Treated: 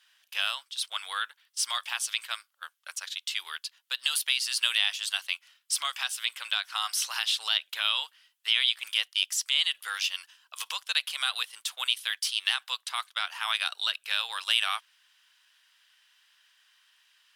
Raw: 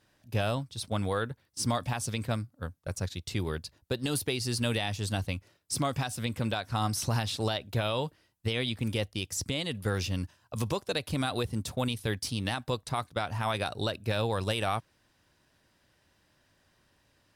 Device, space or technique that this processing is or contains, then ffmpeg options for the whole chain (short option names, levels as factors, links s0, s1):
headphones lying on a table: -af "highpass=f=1200:w=0.5412,highpass=f=1200:w=1.3066,equalizer=f=3100:t=o:w=0.42:g=9.5,volume=1.68"